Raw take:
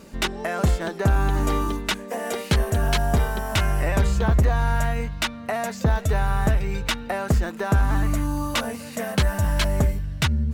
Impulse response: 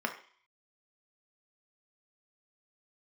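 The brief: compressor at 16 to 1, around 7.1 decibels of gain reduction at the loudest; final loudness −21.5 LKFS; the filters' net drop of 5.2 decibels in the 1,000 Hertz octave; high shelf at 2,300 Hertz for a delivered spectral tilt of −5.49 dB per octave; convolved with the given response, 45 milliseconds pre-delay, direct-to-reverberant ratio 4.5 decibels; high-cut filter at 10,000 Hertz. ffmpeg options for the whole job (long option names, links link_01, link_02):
-filter_complex "[0:a]lowpass=10000,equalizer=frequency=1000:width_type=o:gain=-6,highshelf=frequency=2300:gain=-6.5,acompressor=threshold=-22dB:ratio=16,asplit=2[link_01][link_02];[1:a]atrim=start_sample=2205,adelay=45[link_03];[link_02][link_03]afir=irnorm=-1:irlink=0,volume=-11dB[link_04];[link_01][link_04]amix=inputs=2:normalize=0,volume=7.5dB"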